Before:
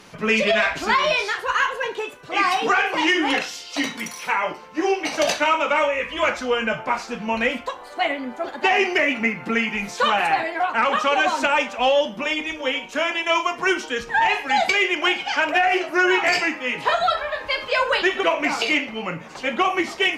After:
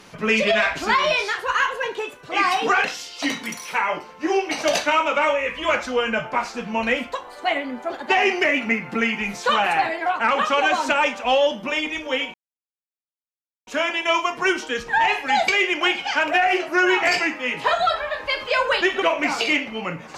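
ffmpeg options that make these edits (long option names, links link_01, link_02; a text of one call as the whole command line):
ffmpeg -i in.wav -filter_complex "[0:a]asplit=3[link_01][link_02][link_03];[link_01]atrim=end=2.842[link_04];[link_02]atrim=start=3.378:end=12.88,asetpts=PTS-STARTPTS,afade=type=out:start_time=9.498:duration=0.004:curve=hsin,apad=pad_dur=1.33[link_05];[link_03]atrim=start=12.88,asetpts=PTS-STARTPTS,afade=type=in:duration=0.004:curve=hsin[link_06];[link_05][link_06]concat=n=2:v=0:a=1[link_07];[link_04][link_07]acrossfade=duration=0.004:curve1=hsin:curve2=hsin" out.wav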